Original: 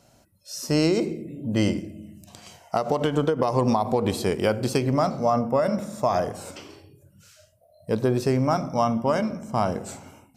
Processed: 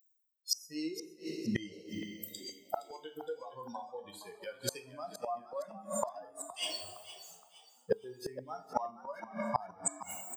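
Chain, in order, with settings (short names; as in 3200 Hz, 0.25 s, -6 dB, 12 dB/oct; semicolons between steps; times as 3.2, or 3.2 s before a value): per-bin expansion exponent 3; Bessel high-pass 420 Hz, order 2; reverse; upward compressor, threshold -34 dBFS; reverse; two-slope reverb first 0.38 s, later 1.7 s, from -18 dB, DRR 3.5 dB; flipped gate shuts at -34 dBFS, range -31 dB; on a send: frequency-shifting echo 0.466 s, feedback 37%, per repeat +74 Hz, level -14 dB; on the sum: gain +17.5 dB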